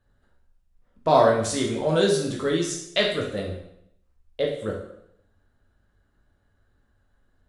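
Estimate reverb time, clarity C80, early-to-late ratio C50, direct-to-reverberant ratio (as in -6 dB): 0.75 s, 8.0 dB, 4.5 dB, -1.5 dB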